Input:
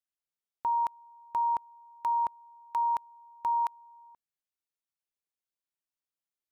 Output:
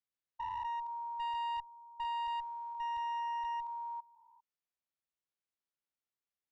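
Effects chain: spectrogram pixelated in time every 400 ms; one-sided clip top -37 dBFS, bottom -32.5 dBFS; distance through air 110 m

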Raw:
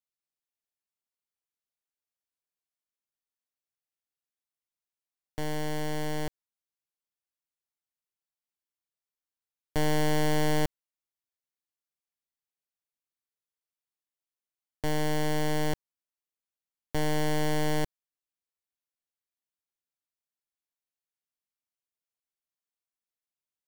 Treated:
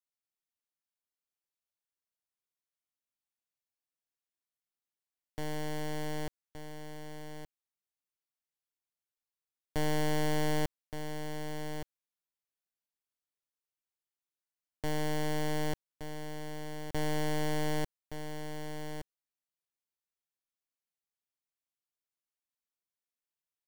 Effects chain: delay 1170 ms -8.5 dB; trim -4.5 dB

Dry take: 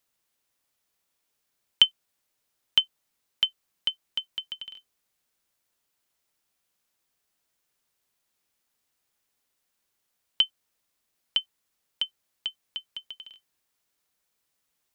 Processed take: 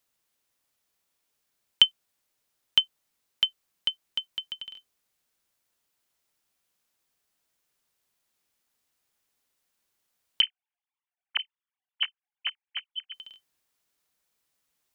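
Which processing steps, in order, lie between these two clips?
10.41–13.14 s: formants replaced by sine waves

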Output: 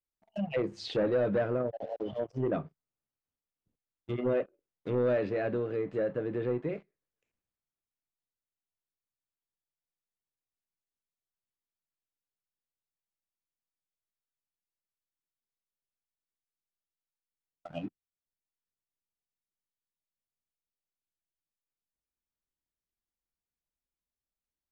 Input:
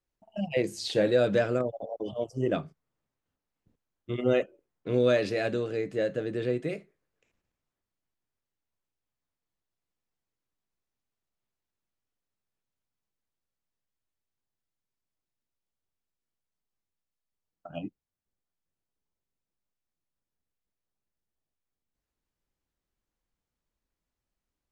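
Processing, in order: waveshaping leveller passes 2; low-pass that closes with the level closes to 1.7 kHz, closed at -20.5 dBFS; trim -8.5 dB

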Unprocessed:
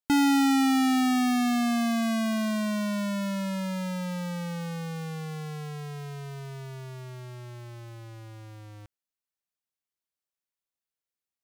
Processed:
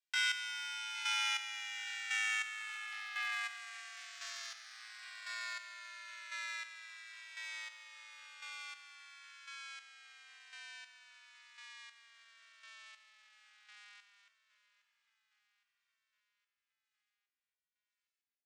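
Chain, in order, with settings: frequency shift +55 Hz; steep low-pass 8.8 kHz 36 dB/octave; tilt EQ -3.5 dB/octave; in parallel at -5 dB: hard clipper -26.5 dBFS, distortion -5 dB; on the sum: inverse Chebyshev high-pass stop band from 300 Hz, stop band 80 dB; tempo 0.62×; square tremolo 0.95 Hz, depth 65%, duty 30%; on a send: feedback delay 814 ms, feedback 57%, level -17.5 dB; on the sum: endless flanger 2.1 ms -0.58 Hz; trim +8 dB

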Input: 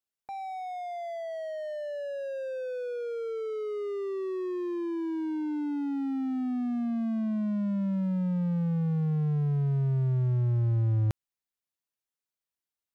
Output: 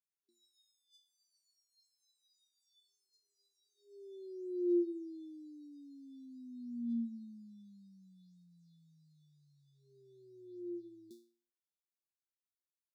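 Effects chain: ladder high-pass 270 Hz, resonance 40%; chord resonator A#3 fifth, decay 0.43 s; FFT band-reject 400–3400 Hz; trim +14 dB

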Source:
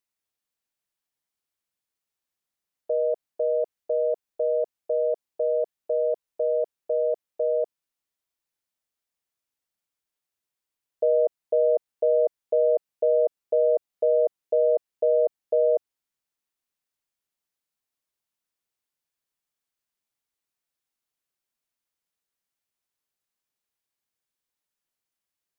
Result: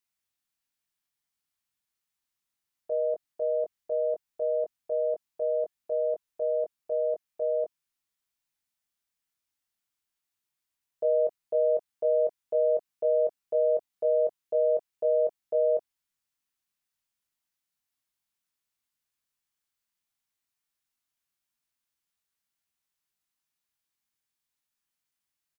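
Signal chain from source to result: peaking EQ 490 Hz -8.5 dB 1.1 oct; doubling 21 ms -5 dB

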